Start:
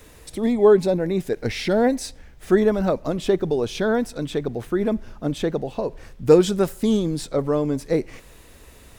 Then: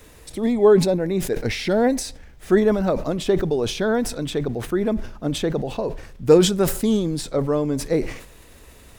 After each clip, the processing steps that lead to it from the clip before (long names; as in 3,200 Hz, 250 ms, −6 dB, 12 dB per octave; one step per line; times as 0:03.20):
level that may fall only so fast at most 90 dB per second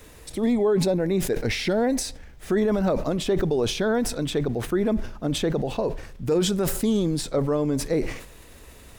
brickwall limiter −14.5 dBFS, peak gain reduction 11.5 dB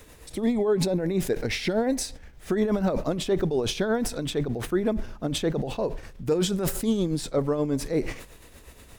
amplitude tremolo 8.4 Hz, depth 50%